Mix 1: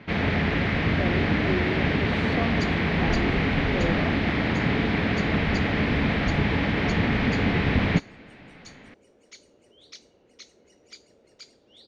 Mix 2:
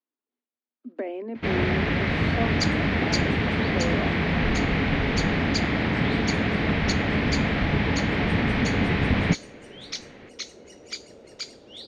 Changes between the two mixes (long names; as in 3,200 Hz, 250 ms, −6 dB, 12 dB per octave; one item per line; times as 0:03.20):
first sound: entry +1.35 s
second sound +11.5 dB